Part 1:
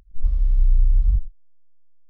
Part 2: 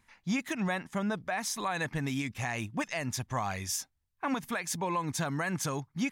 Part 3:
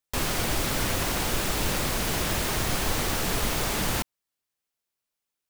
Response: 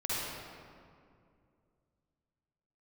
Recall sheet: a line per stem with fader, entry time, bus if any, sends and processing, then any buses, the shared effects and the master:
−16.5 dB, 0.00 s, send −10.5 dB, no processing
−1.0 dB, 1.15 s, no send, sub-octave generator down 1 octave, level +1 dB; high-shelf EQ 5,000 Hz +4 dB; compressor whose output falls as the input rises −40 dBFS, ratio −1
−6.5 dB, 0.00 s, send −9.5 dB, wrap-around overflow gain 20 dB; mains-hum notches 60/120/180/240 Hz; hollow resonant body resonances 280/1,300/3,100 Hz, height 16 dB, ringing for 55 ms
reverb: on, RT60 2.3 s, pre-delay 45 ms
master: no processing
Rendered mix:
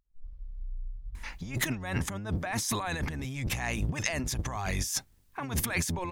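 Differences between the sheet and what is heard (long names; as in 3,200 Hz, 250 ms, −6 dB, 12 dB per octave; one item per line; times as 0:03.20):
stem 1 −16.5 dB → −26.5 dB
stem 2 −1.0 dB → +7.0 dB
stem 3: muted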